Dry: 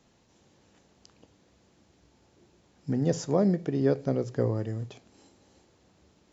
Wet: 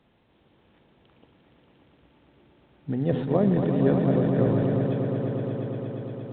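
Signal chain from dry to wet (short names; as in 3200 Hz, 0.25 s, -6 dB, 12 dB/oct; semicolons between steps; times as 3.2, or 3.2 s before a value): swelling echo 0.117 s, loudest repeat 5, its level -8 dB; 3.09–4.87 transient shaper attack +4 dB, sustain +8 dB; µ-law 64 kbps 8000 Hz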